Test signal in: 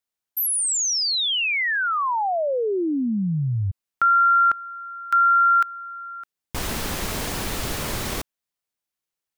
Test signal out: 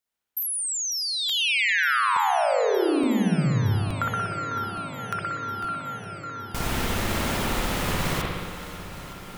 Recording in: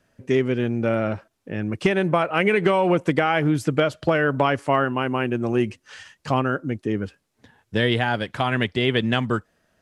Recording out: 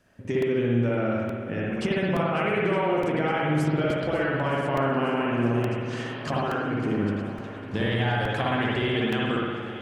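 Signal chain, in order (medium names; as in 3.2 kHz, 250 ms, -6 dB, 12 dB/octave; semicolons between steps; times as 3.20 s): compression 6:1, threshold -27 dBFS; shuffle delay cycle 914 ms, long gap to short 1.5:1, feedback 72%, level -16 dB; spring tank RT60 1.5 s, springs 59 ms, chirp 55 ms, DRR -4.5 dB; crackling interface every 0.87 s, samples 128, repeat, from 0.42 s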